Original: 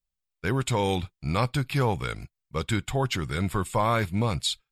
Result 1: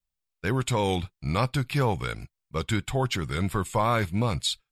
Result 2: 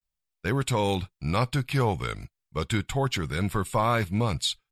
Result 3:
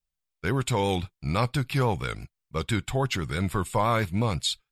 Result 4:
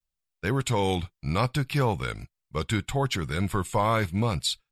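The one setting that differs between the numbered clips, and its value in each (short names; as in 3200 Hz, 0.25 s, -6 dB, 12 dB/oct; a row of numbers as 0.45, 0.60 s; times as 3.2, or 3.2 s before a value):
vibrato, rate: 2.9, 0.35, 6, 0.71 Hz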